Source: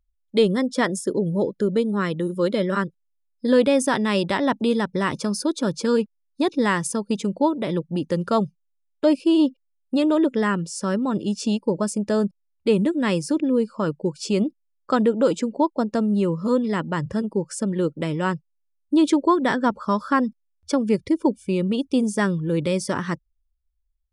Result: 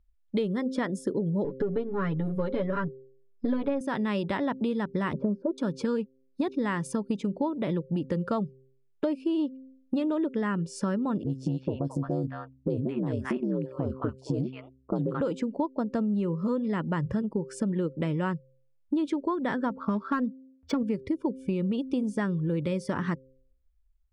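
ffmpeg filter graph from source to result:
ffmpeg -i in.wav -filter_complex "[0:a]asettb=1/sr,asplit=3[link_01][link_02][link_03];[link_01]atrim=end=1.444[link_04];[link_02]atrim=start=1.44:end=3.81,asetpts=PTS-STARTPTS,afade=type=in:duration=0.004:curve=qsin,afade=type=out:start_time=2.366:duration=0.004:curve=qsin,aeval=exprs='if(lt(val(0),0),0.708*val(0),val(0))':channel_layout=same,lowpass=frequency=1800:poles=1,aecho=1:1:7.1:0.96,atrim=end_sample=104517[link_05];[link_03]atrim=start=3.806[link_06];[link_04][link_05]acrossfade=duration=0.004:curve1=hsin:curve2=qsin[link_07];[link_07][link_06]acrossfade=duration=0.004:curve1=qsin:curve2=hsin,asettb=1/sr,asplit=3[link_08][link_09][link_10];[link_08]atrim=end=5.134[link_11];[link_09]atrim=start=5.13:end=5.58,asetpts=PTS-STARTPTS,afade=type=in:duration=0.004:curve=qsin,afade=type=out:start_time=0.446:duration=0.004:curve=qsin,lowpass=frequency=570:width_type=q:width=1.9,aecho=1:1:5.1:0.63,atrim=end_sample=19845[link_12];[link_10]atrim=start=5.576[link_13];[link_11][link_12]acrossfade=duration=0.004:curve1=hsin:curve2=qsin[link_14];[link_14][link_13]acrossfade=duration=0.004:curve1=qsin:curve2=hsin,asettb=1/sr,asplit=3[link_15][link_16][link_17];[link_15]atrim=end=11.234[link_18];[link_16]atrim=start=11.23:end=15.21,asetpts=PTS-STARTPTS,afade=type=in:duration=0.004:curve=qsin,afade=type=out:start_time=3.976:duration=0.004:curve=qsin,highshelf=frequency=2500:gain=-8.5,aeval=exprs='val(0)*sin(2*PI*66*n/s)':channel_layout=same,acrossover=split=880|3500[link_19][link_20][link_21];[link_21]adelay=30[link_22];[link_20]adelay=220[link_23];[link_19][link_23][link_22]amix=inputs=3:normalize=0,atrim=end_sample=175518[link_24];[link_17]atrim=start=15.206[link_25];[link_18][link_24]acrossfade=duration=0.004:curve1=hsin:curve2=qsin[link_26];[link_26][link_25]acrossfade=duration=0.004:curve1=qsin:curve2=hsin,asettb=1/sr,asplit=3[link_27][link_28][link_29];[link_27]atrim=end=19.704[link_30];[link_28]atrim=start=19.7:end=20.83,asetpts=PTS-STARTPTS,afade=type=in:duration=0.004:curve=qsin,afade=type=out:start_time=1.126:duration=0.004:curve=qsin,highpass=72,aecho=1:1:4.4:0.68,atrim=end_sample=49833,adynamicsmooth=sensitivity=3:basefreq=2600[link_31];[link_29]atrim=start=20.826[link_32];[link_30][link_31]acrossfade=duration=0.004:curve1=hsin:curve2=qsin[link_33];[link_33][link_32]acrossfade=duration=0.004:curve1=qsin:curve2=hsin,bass=frequency=250:gain=4,treble=frequency=4000:gain=-12,bandreject=frequency=131.5:width_type=h:width=4,bandreject=frequency=263:width_type=h:width=4,bandreject=frequency=394.5:width_type=h:width=4,bandreject=frequency=526:width_type=h:width=4,acompressor=threshold=-28dB:ratio=6,volume=2dB" out.wav

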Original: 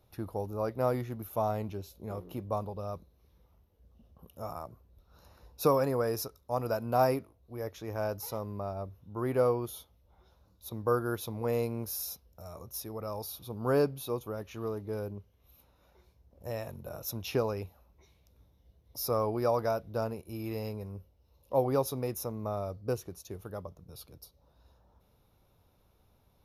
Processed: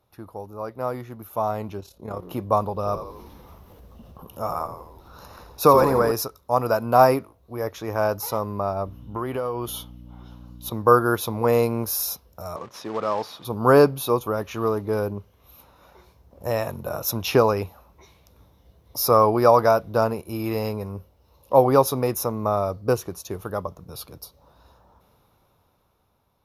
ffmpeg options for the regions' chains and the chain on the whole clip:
ffmpeg -i in.wav -filter_complex "[0:a]asettb=1/sr,asplit=3[link_01][link_02][link_03];[link_01]atrim=end=1.804[link_04];[link_02]atrim=start=1.8:end=2.23,asetpts=PTS-STARTPTS,afade=type=in:duration=0.004:curve=qsin,afade=type=out:start_time=0.426:duration=0.004:curve=qsin,lowpass=11000,bandreject=frequency=2300:width=24,tremolo=f=35:d=0.621[link_05];[link_03]atrim=start=2.226[link_06];[link_04][link_05]acrossfade=duration=0.004:curve1=hsin:curve2=qsin[link_07];[link_07][link_06]acrossfade=duration=0.004:curve1=qsin:curve2=hsin,asettb=1/sr,asplit=3[link_08][link_09][link_10];[link_08]atrim=end=2.754[link_11];[link_09]atrim=start=2.75:end=6.12,asetpts=PTS-STARTPTS,afade=type=in:duration=0.004:curve=qsin,afade=type=out:start_time=3.366:duration=0.004:curve=qsin,acompressor=mode=upward:threshold=-45dB:ratio=2.5:attack=3.2:release=140:knee=2.83:detection=peak,asplit=8[link_12][link_13][link_14][link_15][link_16][link_17][link_18][link_19];[link_13]adelay=84,afreqshift=-64,volume=-9.5dB[link_20];[link_14]adelay=168,afreqshift=-128,volume=-14.1dB[link_21];[link_15]adelay=252,afreqshift=-192,volume=-18.7dB[link_22];[link_16]adelay=336,afreqshift=-256,volume=-23.2dB[link_23];[link_17]adelay=420,afreqshift=-320,volume=-27.8dB[link_24];[link_18]adelay=504,afreqshift=-384,volume=-32.4dB[link_25];[link_19]adelay=588,afreqshift=-448,volume=-37dB[link_26];[link_12][link_20][link_21][link_22][link_23][link_24][link_25][link_26]amix=inputs=8:normalize=0,atrim=end_sample=148617[link_27];[link_10]atrim=start=6.116[link_28];[link_11][link_27]acrossfade=duration=0.004:curve1=hsin:curve2=qsin[link_29];[link_29][link_28]acrossfade=duration=0.004:curve1=qsin:curve2=hsin,asettb=1/sr,asplit=3[link_30][link_31][link_32];[link_30]atrim=end=8.864[link_33];[link_31]atrim=start=8.86:end=10.7,asetpts=PTS-STARTPTS,afade=type=in:duration=0.004:curve=qsin,afade=type=out:start_time=1.836:duration=0.004:curve=qsin,aeval=exprs='val(0)+0.00355*(sin(2*PI*60*n/s)+sin(2*PI*2*60*n/s)/2+sin(2*PI*3*60*n/s)/3+sin(2*PI*4*60*n/s)/4+sin(2*PI*5*60*n/s)/5)':channel_layout=same,equalizer=frequency=3000:width=5.7:gain=11.5,acompressor=threshold=-35dB:ratio=8:attack=3.2:release=140:knee=1:detection=peak[link_34];[link_32]atrim=start=10.696[link_35];[link_33][link_34]acrossfade=duration=0.004:curve1=hsin:curve2=qsin[link_36];[link_36][link_35]acrossfade=duration=0.004:curve1=qsin:curve2=hsin,asettb=1/sr,asplit=3[link_37][link_38][link_39];[link_37]atrim=end=12.564[link_40];[link_38]atrim=start=12.56:end=13.45,asetpts=PTS-STARTPTS,afade=type=in:duration=0.004:curve=qsin,afade=type=out:start_time=0.886:duration=0.004:curve=qsin,bandreject=frequency=2700:width=17,acrusher=bits=3:mode=log:mix=0:aa=0.000001,highpass=180,lowpass=3700[link_41];[link_39]atrim=start=13.446[link_42];[link_40][link_41]acrossfade=duration=0.004:curve1=hsin:curve2=qsin[link_43];[link_43][link_42]acrossfade=duration=0.004:curve1=qsin:curve2=hsin,lowshelf=frequency=68:gain=-9,dynaudnorm=framelen=290:gausssize=13:maxgain=14dB,equalizer=frequency=1100:width_type=o:width=0.94:gain=6,volume=-1.5dB" out.wav

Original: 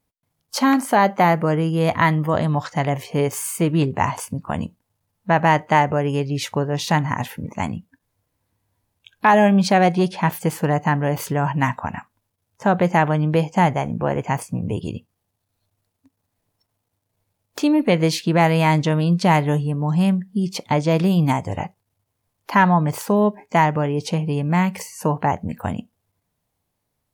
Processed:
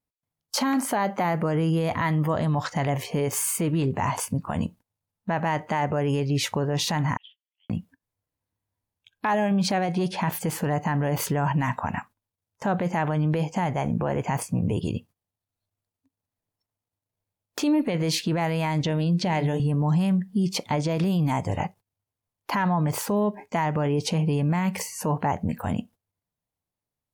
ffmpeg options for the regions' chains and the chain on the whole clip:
ffmpeg -i in.wav -filter_complex "[0:a]asettb=1/sr,asplit=3[link_01][link_02][link_03];[link_01]atrim=end=7.174[link_04];[link_02]atrim=start=7.17:end=7.7,asetpts=PTS-STARTPTS,afade=type=in:duration=0.004:curve=qsin,afade=type=out:start_time=0.526:duration=0.004:curve=qsin,asuperpass=centerf=3200:order=4:qfactor=7.9,aemphasis=mode=reproduction:type=75kf[link_05];[link_03]atrim=start=7.696[link_06];[link_04][link_05]acrossfade=duration=0.004:curve1=hsin:curve2=qsin[link_07];[link_07][link_06]acrossfade=duration=0.004:curve1=qsin:curve2=hsin,asettb=1/sr,asplit=3[link_08][link_09][link_10];[link_08]atrim=end=18.814[link_11];[link_09]atrim=start=18.81:end=19.6,asetpts=PTS-STARTPTS,afade=type=in:duration=0.004:curve=qsin,afade=type=out:start_time=0.786:duration=0.004:curve=qsin,equalizer=frequency=1200:width_type=o:width=0.55:gain=-8.5,bandreject=frequency=50:width_type=h:width=6,bandreject=frequency=100:width_type=h:width=6,bandreject=frequency=150:width_type=h:width=6,bandreject=frequency=200:width_type=h:width=6,bandreject=frequency=250:width_type=h:width=6,bandreject=frequency=300:width_type=h:width=6,bandreject=frequency=350:width_type=h:width=6,bandreject=frequency=400:width_type=h:width=6,bandreject=frequency=450:width_type=h:width=6,acrossover=split=6700[link_12][link_13];[link_13]acompressor=threshold=-57dB:ratio=4:attack=1:release=60[link_14];[link_12][link_14]amix=inputs=2:normalize=0[link_15];[link_10]atrim=start=19.596[link_16];[link_11][link_15]acrossfade=duration=0.004:curve1=hsin:curve2=qsin[link_17];[link_17][link_16]acrossfade=duration=0.004:curve1=qsin:curve2=hsin,acompressor=threshold=-17dB:ratio=6,alimiter=limit=-17.5dB:level=0:latency=1:release=11,agate=range=-15dB:threshold=-46dB:ratio=16:detection=peak,volume=1.5dB" out.wav

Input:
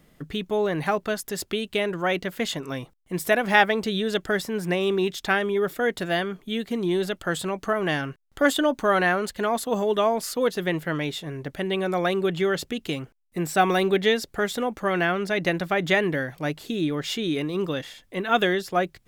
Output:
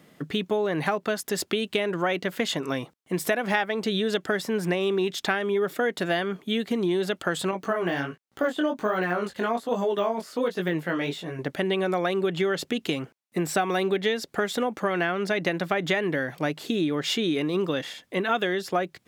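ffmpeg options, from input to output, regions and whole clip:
ffmpeg -i in.wav -filter_complex "[0:a]asettb=1/sr,asplit=3[link_01][link_02][link_03];[link_01]atrim=end=7.514[link_04];[link_02]atrim=start=7.51:end=11.39,asetpts=PTS-STARTPTS,afade=type=in:duration=0.004:curve=qsin,afade=type=out:start_time=3.876:duration=0.004:curve=qsin,deesser=0.9,flanger=delay=16:depth=6.9:speed=1.3[link_05];[link_03]atrim=start=11.386[link_06];[link_04][link_05]acrossfade=duration=0.004:curve1=hsin:curve2=qsin[link_07];[link_07][link_06]acrossfade=duration=0.004:curve1=qsin:curve2=hsin,highpass=160,highshelf=frequency=8800:gain=-6,acompressor=threshold=-27dB:ratio=5,volume=5dB" out.wav

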